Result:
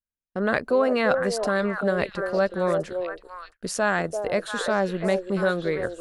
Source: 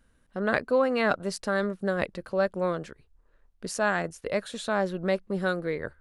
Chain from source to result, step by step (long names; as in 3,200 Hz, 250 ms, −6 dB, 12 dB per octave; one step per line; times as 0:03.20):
echo through a band-pass that steps 342 ms, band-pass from 500 Hz, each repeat 1.4 octaves, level −4 dB
noise gate −51 dBFS, range −39 dB
in parallel at −1 dB: brickwall limiter −18.5 dBFS, peak gain reduction 8 dB
on the sum: level −1.5 dB